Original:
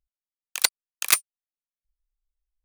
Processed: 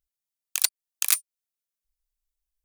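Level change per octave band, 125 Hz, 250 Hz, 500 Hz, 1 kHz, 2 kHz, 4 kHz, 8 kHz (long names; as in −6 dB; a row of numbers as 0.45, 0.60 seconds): below −10 dB, below −10 dB, below −10 dB, −9.0 dB, −7.0 dB, −3.5 dB, −0.5 dB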